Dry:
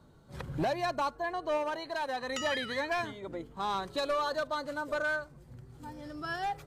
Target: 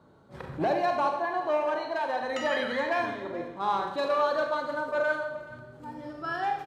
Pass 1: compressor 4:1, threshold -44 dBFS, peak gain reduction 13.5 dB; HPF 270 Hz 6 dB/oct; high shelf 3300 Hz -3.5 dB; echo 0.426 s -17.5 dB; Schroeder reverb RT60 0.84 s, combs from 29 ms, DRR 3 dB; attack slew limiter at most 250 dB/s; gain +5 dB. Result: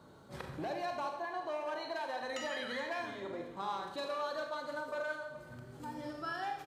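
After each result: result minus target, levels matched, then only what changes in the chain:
compressor: peak gain reduction +13.5 dB; 8000 Hz band +9.0 dB
remove: compressor 4:1, threshold -44 dBFS, peak gain reduction 13.5 dB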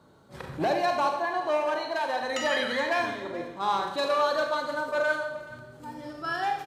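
8000 Hz band +7.5 dB
change: high shelf 3300 Hz -14.5 dB

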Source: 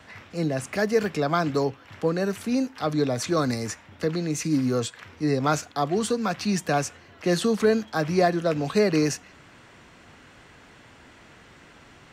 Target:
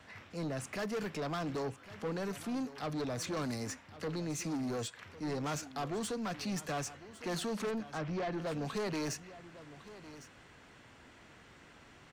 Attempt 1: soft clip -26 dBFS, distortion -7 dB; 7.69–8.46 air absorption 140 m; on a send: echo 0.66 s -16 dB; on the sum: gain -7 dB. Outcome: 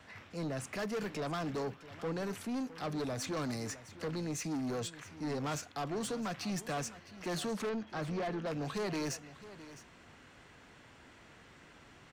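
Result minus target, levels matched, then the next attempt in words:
echo 0.445 s early
soft clip -26 dBFS, distortion -7 dB; 7.69–8.46 air absorption 140 m; on a send: echo 1.105 s -16 dB; on the sum: gain -7 dB

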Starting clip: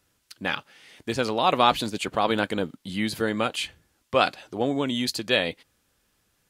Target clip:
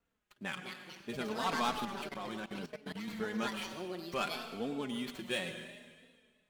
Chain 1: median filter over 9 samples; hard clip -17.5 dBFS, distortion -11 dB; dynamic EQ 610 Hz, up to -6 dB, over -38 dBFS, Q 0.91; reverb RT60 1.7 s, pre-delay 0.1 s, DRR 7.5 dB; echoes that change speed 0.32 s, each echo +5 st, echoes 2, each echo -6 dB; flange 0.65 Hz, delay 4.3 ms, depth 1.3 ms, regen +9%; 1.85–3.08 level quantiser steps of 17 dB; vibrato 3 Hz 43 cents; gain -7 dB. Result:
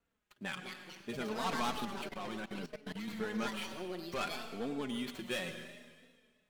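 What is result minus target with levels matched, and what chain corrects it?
hard clip: distortion +11 dB
median filter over 9 samples; hard clip -11 dBFS, distortion -22 dB; dynamic EQ 610 Hz, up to -6 dB, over -38 dBFS, Q 0.91; reverb RT60 1.7 s, pre-delay 0.1 s, DRR 7.5 dB; echoes that change speed 0.32 s, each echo +5 st, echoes 2, each echo -6 dB; flange 0.65 Hz, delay 4.3 ms, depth 1.3 ms, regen +9%; 1.85–3.08 level quantiser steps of 17 dB; vibrato 3 Hz 43 cents; gain -7 dB

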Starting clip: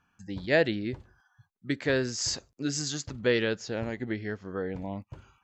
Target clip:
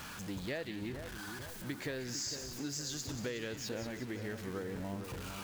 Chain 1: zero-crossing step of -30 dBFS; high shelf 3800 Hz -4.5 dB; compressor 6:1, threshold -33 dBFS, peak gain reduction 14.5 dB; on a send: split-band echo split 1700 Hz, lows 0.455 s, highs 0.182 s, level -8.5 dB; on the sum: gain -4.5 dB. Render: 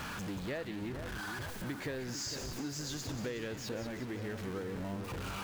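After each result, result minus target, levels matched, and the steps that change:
zero-crossing step: distortion +6 dB; 8000 Hz band -2.5 dB
change: zero-crossing step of -37 dBFS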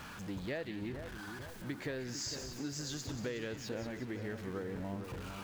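8000 Hz band -2.5 dB
change: high shelf 3800 Hz +4 dB

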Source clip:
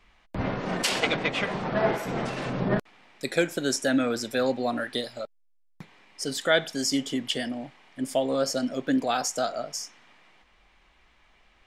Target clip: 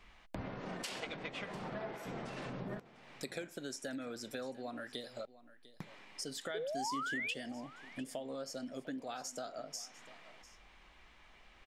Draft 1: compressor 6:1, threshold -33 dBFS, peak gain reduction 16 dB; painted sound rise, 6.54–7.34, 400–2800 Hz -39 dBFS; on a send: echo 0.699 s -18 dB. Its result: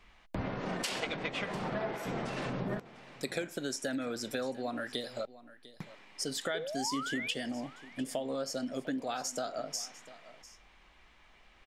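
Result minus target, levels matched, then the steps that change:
compressor: peak gain reduction -7 dB
change: compressor 6:1, threshold -41.5 dBFS, peak gain reduction 23 dB

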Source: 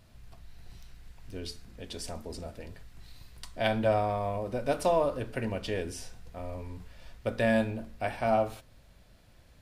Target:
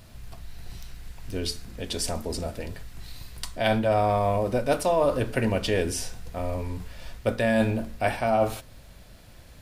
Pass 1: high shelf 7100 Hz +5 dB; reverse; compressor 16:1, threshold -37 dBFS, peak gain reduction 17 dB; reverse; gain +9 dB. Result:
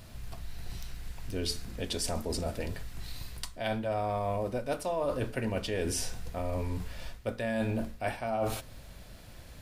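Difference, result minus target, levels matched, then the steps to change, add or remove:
compressor: peak gain reduction +9.5 dB
change: compressor 16:1, threshold -27 dBFS, peak gain reduction 7.5 dB

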